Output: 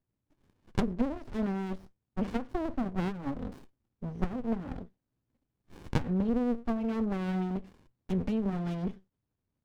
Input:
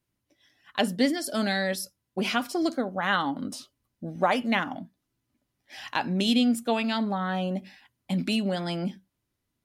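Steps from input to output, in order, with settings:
treble cut that deepens with the level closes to 380 Hz, closed at −20 dBFS
windowed peak hold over 65 samples
level −1.5 dB

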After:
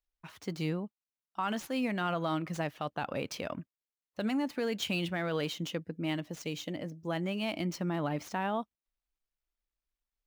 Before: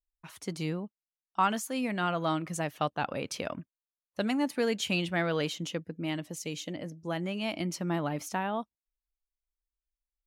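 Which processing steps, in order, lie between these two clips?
running median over 5 samples
brickwall limiter −23.5 dBFS, peak gain reduction 9 dB

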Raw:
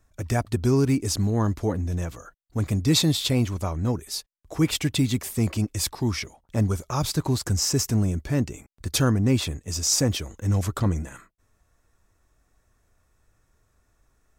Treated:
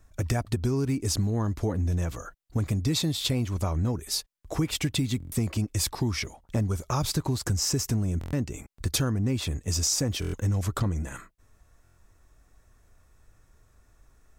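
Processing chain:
low-shelf EQ 83 Hz +5 dB
downward compressor, threshold −27 dBFS, peak gain reduction 12 dB
buffer that repeats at 0:05.18/0:08.19/0:10.20/0:11.83, samples 1,024, times 5
level +3.5 dB

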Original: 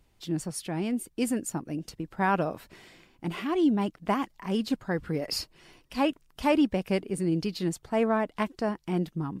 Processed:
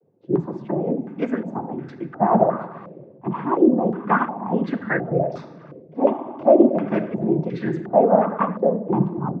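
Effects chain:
rectangular room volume 1,400 cubic metres, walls mixed, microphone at 0.69 metres
cochlear-implant simulation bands 16
low-pass on a step sequencer 2.8 Hz 500–1,700 Hz
level +4 dB

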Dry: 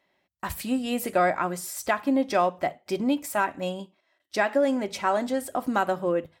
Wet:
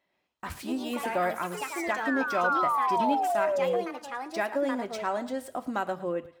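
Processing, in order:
running median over 3 samples
sound drawn into the spectrogram fall, 0:02.44–0:03.81, 460–1,500 Hz −21 dBFS
delay with pitch and tempo change per echo 118 ms, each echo +4 semitones, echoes 3, each echo −6 dB
feedback echo with a high-pass in the loop 110 ms, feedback 32%, level −16 dB
level −6 dB

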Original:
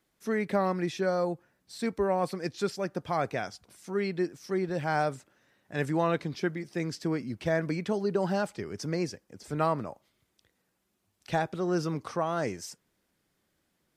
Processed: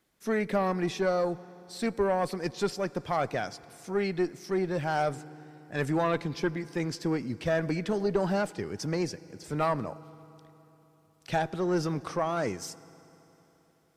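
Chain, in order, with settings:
on a send at −20 dB: convolution reverb RT60 3.6 s, pre-delay 71 ms
on the sum: tube saturation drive 18 dB, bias 0.45
level +3.5 dB

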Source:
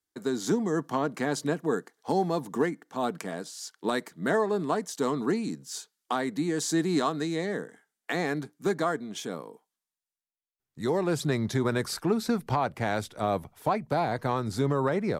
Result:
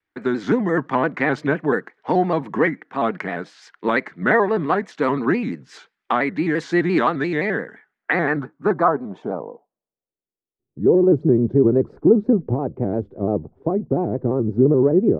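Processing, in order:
low-pass filter sweep 2,100 Hz → 380 Hz, 0:07.76–0:10.47
pitch modulation by a square or saw wave square 5.8 Hz, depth 100 cents
level +7 dB

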